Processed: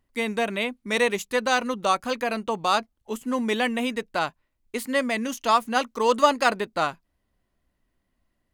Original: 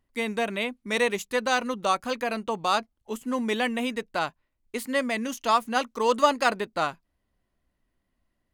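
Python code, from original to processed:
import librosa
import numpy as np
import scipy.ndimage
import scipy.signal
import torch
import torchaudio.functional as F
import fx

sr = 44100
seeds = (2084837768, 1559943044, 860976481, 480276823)

y = F.gain(torch.from_numpy(x), 2.0).numpy()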